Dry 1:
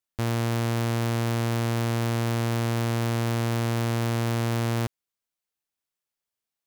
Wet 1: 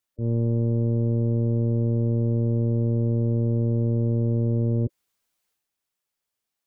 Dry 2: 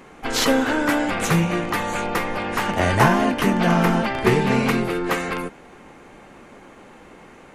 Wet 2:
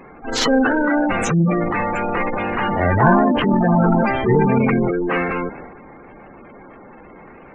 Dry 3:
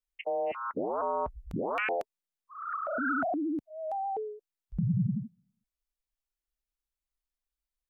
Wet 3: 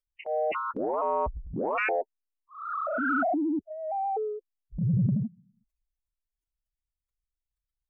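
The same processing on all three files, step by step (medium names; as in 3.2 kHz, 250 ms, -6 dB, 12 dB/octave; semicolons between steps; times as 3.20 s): spectral gate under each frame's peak -15 dB strong; transient shaper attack -7 dB, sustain +7 dB; trim +4 dB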